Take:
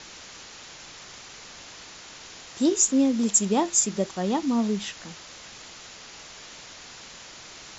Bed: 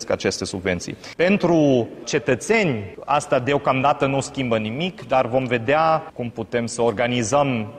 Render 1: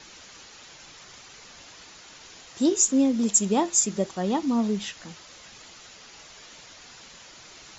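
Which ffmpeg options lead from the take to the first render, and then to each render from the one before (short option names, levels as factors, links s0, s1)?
-af "afftdn=nr=6:nf=-45"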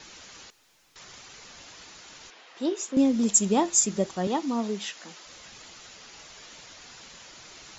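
-filter_complex "[0:a]asettb=1/sr,asplit=3[s0][s1][s2];[s0]atrim=end=0.504[s3];[s1]atrim=start=0.5:end=0.96,asetpts=PTS-STARTPTS,afade=t=in:d=0.004:c=qsin,afade=t=out:st=0.456:d=0.004:c=qsin,aeval=exprs='(tanh(1410*val(0)+0.3)-tanh(0.3))/1410':c=same[s4];[s2]atrim=start=0.956[s5];[s3][s4]acrossfade=d=0.004:c1=hsin:c2=qsin[s6];[s6][s5]acrossfade=d=0.004:c1=qsin:c2=hsin,asettb=1/sr,asplit=3[s7][s8][s9];[s7]atrim=end=2.304[s10];[s8]atrim=start=2.3:end=2.97,asetpts=PTS-STARTPTS,afade=t=in:d=0.004:c=qsin,afade=t=out:st=0.666:d=0.004:c=qsin,highpass=420,lowpass=3200[s11];[s9]atrim=start=2.966[s12];[s10][s11]acrossfade=d=0.004:c1=hsin:c2=qsin[s13];[s13][s12]acrossfade=d=0.004:c1=qsin:c2=hsin,asettb=1/sr,asplit=3[s14][s15][s16];[s14]atrim=end=4.274[s17];[s15]atrim=start=4.27:end=5.26,asetpts=PTS-STARTPTS,afade=t=in:d=0.004:c=qsin,afade=t=out:st=0.986:d=0.004:c=qsin,highpass=290[s18];[s16]atrim=start=5.256[s19];[s17][s18]acrossfade=d=0.004:c1=hsin:c2=qsin[s20];[s20][s19]acrossfade=d=0.004:c1=qsin:c2=hsin"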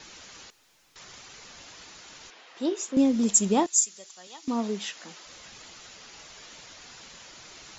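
-filter_complex "[0:a]asettb=1/sr,asplit=3[s0][s1][s2];[s0]atrim=end=3.664[s3];[s1]atrim=start=3.66:end=4.48,asetpts=PTS-STARTPTS,afade=t=in:d=0.004:c=qsin,afade=t=out:st=0.816:d=0.004:c=qsin,aderivative[s4];[s2]atrim=start=4.476[s5];[s3][s4]acrossfade=d=0.004:c1=hsin:c2=qsin[s6];[s6][s5]acrossfade=d=0.004:c1=qsin:c2=hsin"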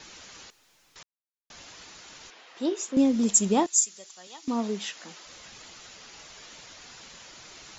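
-filter_complex "[0:a]asplit=3[s0][s1][s2];[s0]atrim=end=1.03,asetpts=PTS-STARTPTS,afade=t=out:st=1.026:d=0.004:c=hsin[s3];[s1]atrim=start=1.03:end=1.5,asetpts=PTS-STARTPTS,volume=0[s4];[s2]atrim=start=1.5,asetpts=PTS-STARTPTS,afade=t=in:d=0.004:c=hsin[s5];[s3][s4][s5]concat=n=3:v=0:a=1"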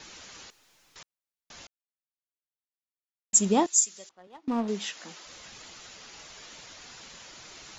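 -filter_complex "[0:a]asettb=1/sr,asplit=3[s0][s1][s2];[s0]atrim=end=4.094[s3];[s1]atrim=start=4.09:end=4.68,asetpts=PTS-STARTPTS,afade=t=in:d=0.004:c=qsin,afade=t=out:st=0.586:d=0.004:c=qsin,adynamicsmooth=sensitivity=5.5:basefreq=860[s4];[s2]atrim=start=4.676[s5];[s3][s4]acrossfade=d=0.004:c1=hsin:c2=qsin[s6];[s6][s5]acrossfade=d=0.004:c1=qsin:c2=hsin,asplit=3[s7][s8][s9];[s7]atrim=end=1.67,asetpts=PTS-STARTPTS,afade=t=out:st=1.666:d=0.004:c=hsin[s10];[s8]atrim=start=1.67:end=3.33,asetpts=PTS-STARTPTS,volume=0[s11];[s9]atrim=start=3.33,asetpts=PTS-STARTPTS,afade=t=in:d=0.004:c=hsin[s12];[s10][s11][s12]concat=n=3:v=0:a=1"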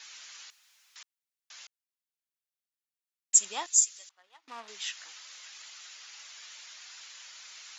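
-af "highpass=1500"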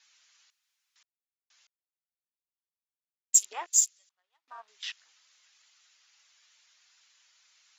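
-af "afwtdn=0.0112,equalizer=f=180:w=1.1:g=-15"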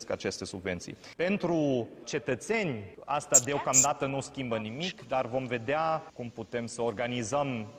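-filter_complex "[1:a]volume=0.266[s0];[0:a][s0]amix=inputs=2:normalize=0"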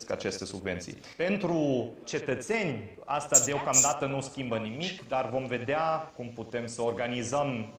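-af "aecho=1:1:36|79:0.188|0.282"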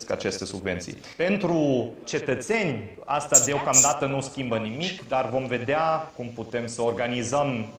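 -af "volume=1.78,alimiter=limit=0.891:level=0:latency=1"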